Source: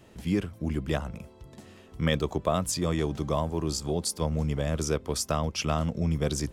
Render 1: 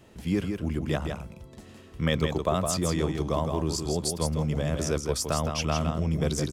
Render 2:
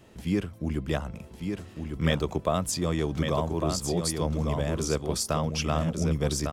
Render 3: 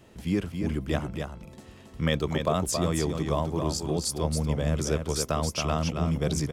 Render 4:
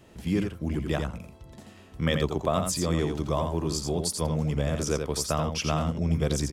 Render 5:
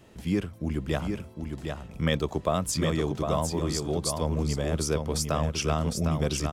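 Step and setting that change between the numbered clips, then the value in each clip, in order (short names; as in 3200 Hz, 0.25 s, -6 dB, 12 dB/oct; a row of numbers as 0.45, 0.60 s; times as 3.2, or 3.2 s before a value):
echo, time: 163, 1152, 274, 85, 756 ms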